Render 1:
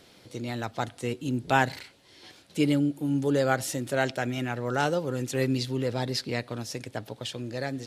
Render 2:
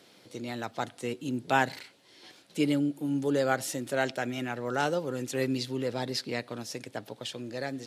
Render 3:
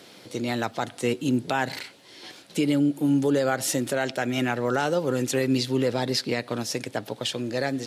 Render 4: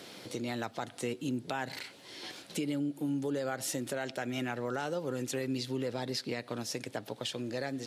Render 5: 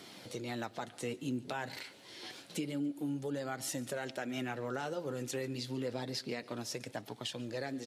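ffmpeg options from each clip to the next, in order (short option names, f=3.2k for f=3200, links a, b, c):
-af "highpass=160,volume=-2dB"
-af "alimiter=limit=-23dB:level=0:latency=1:release=146,volume=9dB"
-af "acompressor=threshold=-40dB:ratio=2"
-af "flanger=delay=0.9:depth=8.9:regen=-55:speed=0.28:shape=sinusoidal,aecho=1:1:143|286|429:0.0841|0.032|0.0121,volume=1dB"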